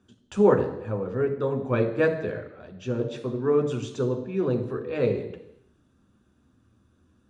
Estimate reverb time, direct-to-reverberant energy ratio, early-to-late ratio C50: 0.85 s, 3.5 dB, 9.5 dB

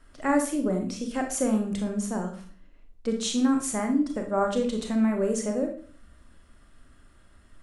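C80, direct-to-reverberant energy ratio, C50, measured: 13.0 dB, 3.5 dB, 8.0 dB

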